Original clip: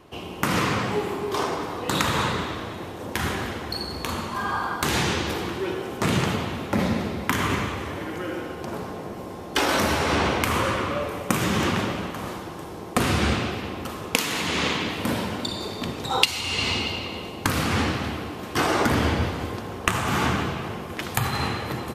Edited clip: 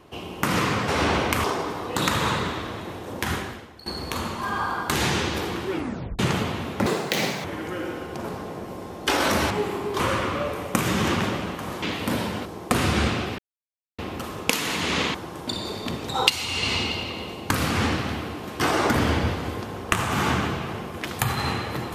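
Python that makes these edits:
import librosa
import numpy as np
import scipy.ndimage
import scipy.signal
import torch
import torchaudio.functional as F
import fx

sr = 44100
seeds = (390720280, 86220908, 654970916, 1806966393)

y = fx.edit(x, sr, fx.swap(start_s=0.88, length_s=0.49, other_s=9.99, other_length_s=0.56),
    fx.fade_out_to(start_s=3.24, length_s=0.55, curve='qua', floor_db=-16.5),
    fx.tape_stop(start_s=5.65, length_s=0.47),
    fx.speed_span(start_s=6.79, length_s=1.14, speed=1.95),
    fx.swap(start_s=12.38, length_s=0.33, other_s=14.8, other_length_s=0.63),
    fx.insert_silence(at_s=13.64, length_s=0.6), tone=tone)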